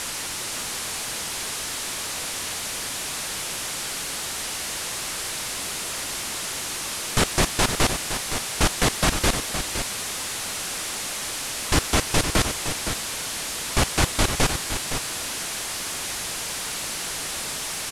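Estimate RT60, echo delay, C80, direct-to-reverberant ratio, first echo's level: no reverb audible, 515 ms, no reverb audible, no reverb audible, −8.5 dB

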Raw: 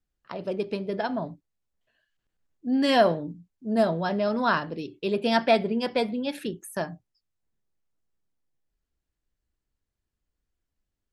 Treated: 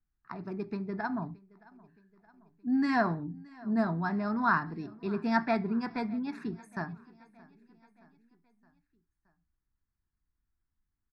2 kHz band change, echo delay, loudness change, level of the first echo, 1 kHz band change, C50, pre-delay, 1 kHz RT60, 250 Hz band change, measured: −3.0 dB, 621 ms, −6.0 dB, −23.5 dB, −4.5 dB, no reverb audible, no reverb audible, no reverb audible, −2.5 dB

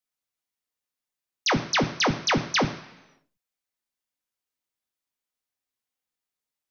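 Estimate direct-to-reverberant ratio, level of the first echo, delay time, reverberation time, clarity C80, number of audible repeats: 4.0 dB, no echo audible, no echo audible, 1.0 s, 13.5 dB, no echo audible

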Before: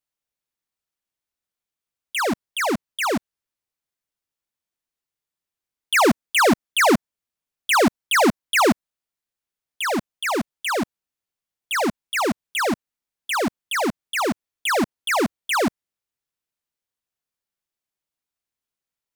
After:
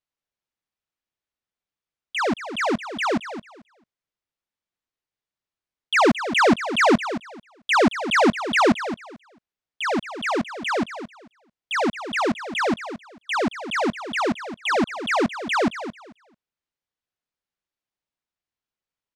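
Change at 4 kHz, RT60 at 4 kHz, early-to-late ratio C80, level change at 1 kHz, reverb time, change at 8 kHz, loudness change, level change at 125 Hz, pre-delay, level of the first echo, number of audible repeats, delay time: −2.0 dB, no reverb audible, no reverb audible, 0.0 dB, no reverb audible, −8.0 dB, −1.0 dB, 0.0 dB, no reverb audible, −11.5 dB, 2, 221 ms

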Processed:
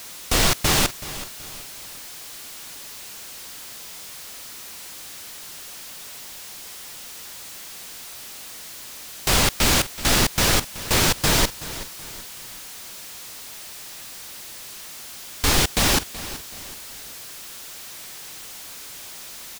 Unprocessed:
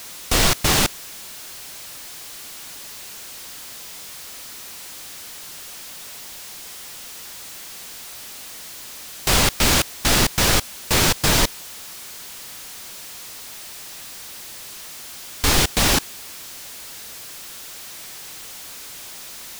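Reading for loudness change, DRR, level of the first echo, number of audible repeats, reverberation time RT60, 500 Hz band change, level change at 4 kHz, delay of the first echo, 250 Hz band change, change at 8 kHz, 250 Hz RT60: −1.5 dB, no reverb audible, −15.5 dB, 3, no reverb audible, −1.5 dB, −1.5 dB, 377 ms, −1.5 dB, −1.5 dB, no reverb audible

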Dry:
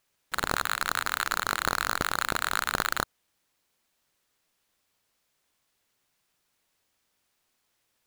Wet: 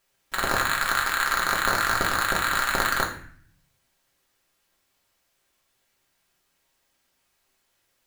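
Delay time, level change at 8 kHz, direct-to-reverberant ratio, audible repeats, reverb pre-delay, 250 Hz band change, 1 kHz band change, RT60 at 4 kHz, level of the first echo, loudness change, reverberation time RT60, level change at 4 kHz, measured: no echo audible, +3.5 dB, −3.0 dB, no echo audible, 3 ms, +4.0 dB, +5.0 dB, 0.45 s, no echo audible, +5.0 dB, 0.50 s, +3.5 dB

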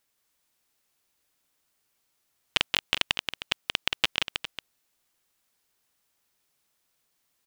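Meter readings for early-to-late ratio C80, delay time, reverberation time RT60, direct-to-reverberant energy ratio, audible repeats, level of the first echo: no reverb audible, 178 ms, no reverb audible, no reverb audible, 2, −4.5 dB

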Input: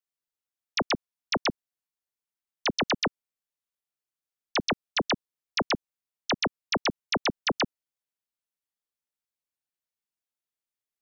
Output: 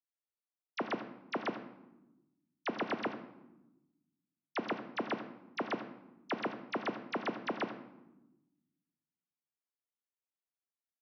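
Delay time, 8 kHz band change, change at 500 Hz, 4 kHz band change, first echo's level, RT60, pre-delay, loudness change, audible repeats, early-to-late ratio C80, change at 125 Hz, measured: 88 ms, can't be measured, −6.0 dB, −18.0 dB, −13.0 dB, 1.0 s, 3 ms, −9.5 dB, 1, 10.5 dB, −12.5 dB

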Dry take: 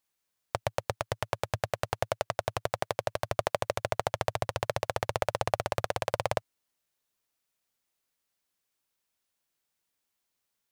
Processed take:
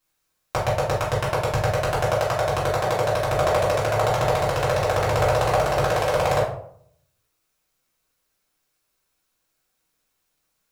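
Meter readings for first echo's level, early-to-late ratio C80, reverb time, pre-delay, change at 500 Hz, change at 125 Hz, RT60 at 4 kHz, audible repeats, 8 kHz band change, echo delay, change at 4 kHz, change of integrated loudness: no echo audible, 9.0 dB, 0.65 s, 3 ms, +11.0 dB, +12.5 dB, 0.35 s, no echo audible, +8.0 dB, no echo audible, +8.0 dB, +10.5 dB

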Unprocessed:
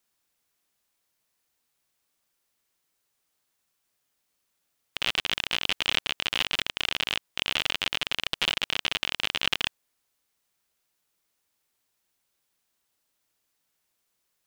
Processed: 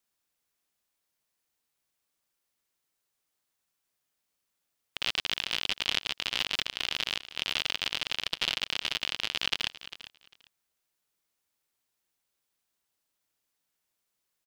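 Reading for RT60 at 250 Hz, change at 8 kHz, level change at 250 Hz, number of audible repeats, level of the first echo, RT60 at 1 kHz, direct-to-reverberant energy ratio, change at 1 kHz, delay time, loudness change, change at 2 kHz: no reverb audible, −2.0 dB, −5.0 dB, 2, −15.0 dB, no reverb audible, no reverb audible, −5.0 dB, 399 ms, −3.0 dB, −4.0 dB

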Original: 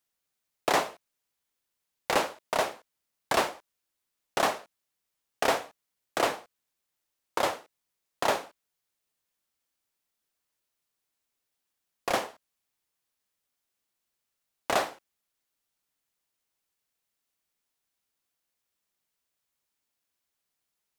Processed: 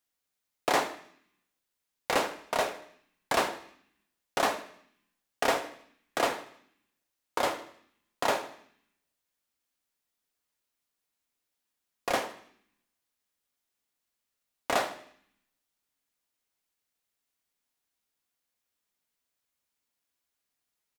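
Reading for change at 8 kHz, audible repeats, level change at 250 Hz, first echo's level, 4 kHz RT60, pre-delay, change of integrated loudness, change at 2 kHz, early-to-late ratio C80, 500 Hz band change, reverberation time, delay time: −1.0 dB, 3, −0.5 dB, −17.0 dB, 0.80 s, 3 ms, −1.0 dB, −0.5 dB, 16.5 dB, −1.0 dB, 0.65 s, 78 ms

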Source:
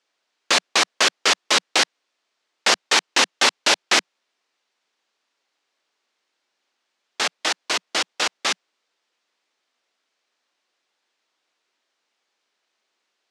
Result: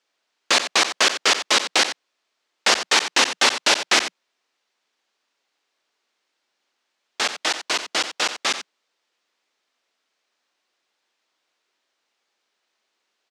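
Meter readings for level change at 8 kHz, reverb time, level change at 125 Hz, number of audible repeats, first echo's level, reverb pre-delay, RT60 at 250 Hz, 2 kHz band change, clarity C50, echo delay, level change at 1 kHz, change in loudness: +0.5 dB, no reverb audible, can't be measured, 1, −11.0 dB, no reverb audible, no reverb audible, +0.5 dB, no reverb audible, 89 ms, +0.5 dB, 0.0 dB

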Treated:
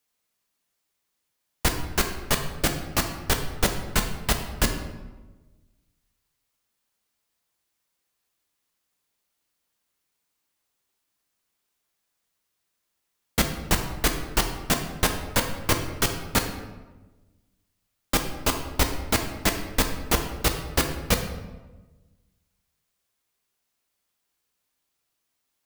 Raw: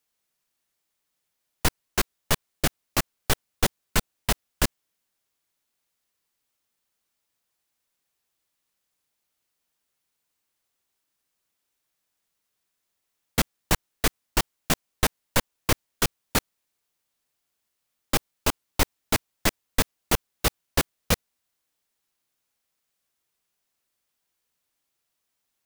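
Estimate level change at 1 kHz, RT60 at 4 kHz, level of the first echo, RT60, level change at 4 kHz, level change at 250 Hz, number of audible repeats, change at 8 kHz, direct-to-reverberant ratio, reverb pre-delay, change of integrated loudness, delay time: +1.5 dB, 0.75 s, no echo audible, 1.2 s, +1.0 dB, +2.0 dB, no echo audible, +1.0 dB, 4.0 dB, 4 ms, +1.0 dB, no echo audible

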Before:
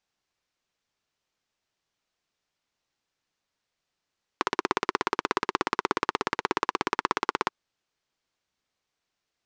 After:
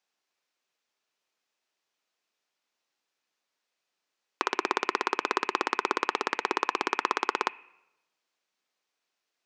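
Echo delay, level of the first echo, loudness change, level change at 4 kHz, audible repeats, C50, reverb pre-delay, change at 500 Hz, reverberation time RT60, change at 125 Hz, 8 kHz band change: no echo audible, no echo audible, 0.0 dB, 0.0 dB, no echo audible, 14.0 dB, 5 ms, −1.0 dB, 1.0 s, below −10 dB, 0.0 dB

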